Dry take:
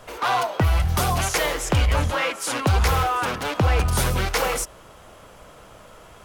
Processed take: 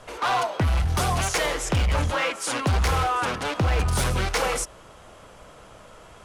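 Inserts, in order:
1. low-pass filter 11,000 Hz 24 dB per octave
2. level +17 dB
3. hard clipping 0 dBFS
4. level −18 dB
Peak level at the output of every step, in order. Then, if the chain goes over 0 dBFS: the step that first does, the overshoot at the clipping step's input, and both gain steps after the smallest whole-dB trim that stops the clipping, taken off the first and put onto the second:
−11.5, +5.5, 0.0, −18.0 dBFS
step 2, 5.5 dB
step 2 +11 dB, step 4 −12 dB

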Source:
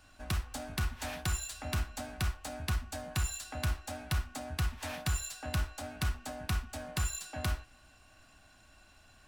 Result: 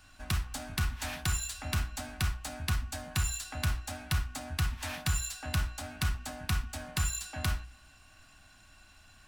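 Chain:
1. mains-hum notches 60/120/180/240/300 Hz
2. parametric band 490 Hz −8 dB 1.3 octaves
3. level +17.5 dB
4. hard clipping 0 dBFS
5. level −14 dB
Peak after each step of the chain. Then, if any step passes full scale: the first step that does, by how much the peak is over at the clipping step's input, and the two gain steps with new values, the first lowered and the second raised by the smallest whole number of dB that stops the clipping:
−23.0, −22.5, −5.0, −5.0, −19.0 dBFS
no step passes full scale

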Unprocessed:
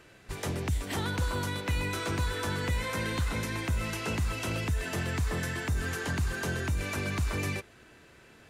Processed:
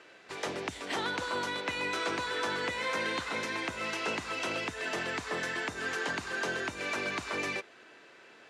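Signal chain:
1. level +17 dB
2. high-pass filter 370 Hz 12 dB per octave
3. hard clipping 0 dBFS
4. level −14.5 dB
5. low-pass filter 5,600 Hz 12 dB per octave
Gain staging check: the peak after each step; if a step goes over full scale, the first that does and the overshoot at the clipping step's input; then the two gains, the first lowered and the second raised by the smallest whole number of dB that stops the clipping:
−4.0, −3.0, −3.0, −17.5, −18.0 dBFS
no step passes full scale

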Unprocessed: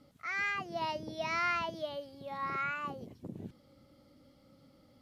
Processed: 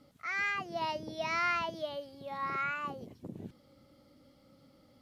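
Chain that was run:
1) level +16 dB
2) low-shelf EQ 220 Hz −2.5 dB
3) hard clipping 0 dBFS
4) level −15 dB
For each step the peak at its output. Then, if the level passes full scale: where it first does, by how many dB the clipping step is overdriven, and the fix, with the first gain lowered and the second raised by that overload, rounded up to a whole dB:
−5.0, −5.0, −5.0, −20.0 dBFS
no step passes full scale

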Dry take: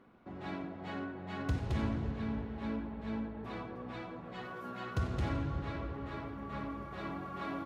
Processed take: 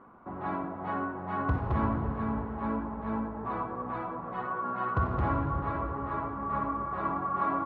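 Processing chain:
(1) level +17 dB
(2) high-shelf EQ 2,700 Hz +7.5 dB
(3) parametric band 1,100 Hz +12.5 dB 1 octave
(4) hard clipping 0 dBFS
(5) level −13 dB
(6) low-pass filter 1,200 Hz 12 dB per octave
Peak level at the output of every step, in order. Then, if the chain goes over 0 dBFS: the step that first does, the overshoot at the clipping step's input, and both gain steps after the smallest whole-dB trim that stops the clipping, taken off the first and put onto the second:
−5.0, −5.0, −2.0, −2.0, −15.0, −16.5 dBFS
no step passes full scale

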